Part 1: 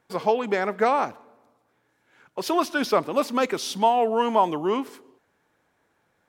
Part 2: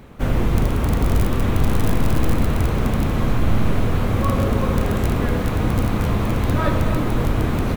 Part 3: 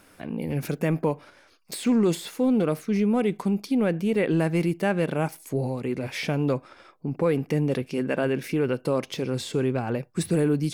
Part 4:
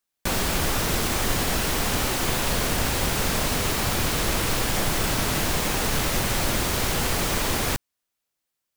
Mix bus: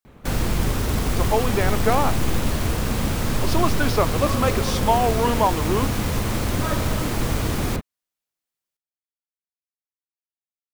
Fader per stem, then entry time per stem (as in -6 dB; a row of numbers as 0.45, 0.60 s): 0.0 dB, -4.5 dB, off, -6.0 dB; 1.05 s, 0.05 s, off, 0.00 s